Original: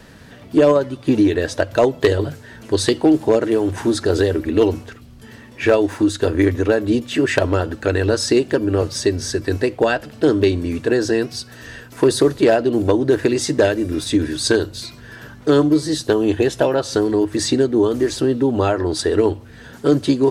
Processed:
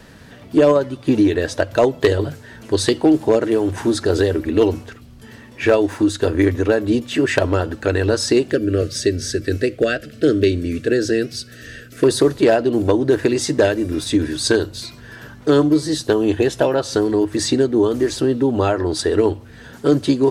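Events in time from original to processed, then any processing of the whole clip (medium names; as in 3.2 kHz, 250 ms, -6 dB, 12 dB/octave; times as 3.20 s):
8.51–12.04 s: Butterworth band-stop 900 Hz, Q 1.3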